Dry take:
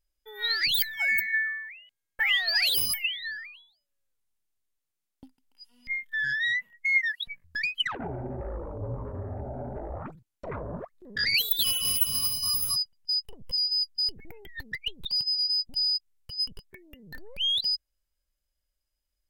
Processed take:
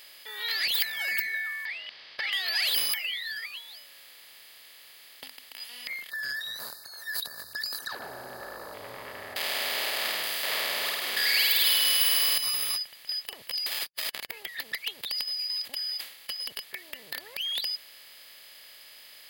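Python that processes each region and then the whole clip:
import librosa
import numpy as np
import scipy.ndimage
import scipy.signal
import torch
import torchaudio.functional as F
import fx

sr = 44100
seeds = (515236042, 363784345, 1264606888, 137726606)

y = fx.chain(x, sr, fx.over_compress(threshold_db=-30.0, ratio=-1.0),
    fx.resample_bad(factor=4, down='none', up='filtered'), at=(1.65, 2.33))
y = fx.chain(y, sr, fx.brickwall_bandstop(low_hz=1800.0, high_hz=3700.0),
    fx.high_shelf(hz=12000.0, db=6.0),
    fx.sustainer(db_per_s=61.0), at=(6.1, 8.74))
y = fx.chain(y, sr, fx.zero_step(step_db=-27.5),
    fx.highpass(hz=400.0, slope=12),
    fx.room_flutter(wall_m=8.8, rt60_s=0.9), at=(9.36, 12.38))
y = fx.chain(y, sr, fx.halfwave_hold(),
    fx.spectral_comp(ratio=2.0), at=(13.66, 14.3))
y = fx.chain(y, sr, fx.comb(ms=3.7, depth=0.69),
    fx.sustainer(db_per_s=150.0), at=(15.61, 16.47))
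y = fx.bin_compress(y, sr, power=0.4)
y = fx.highpass(y, sr, hz=880.0, slope=6)
y = F.gain(torch.from_numpy(y), -7.5).numpy()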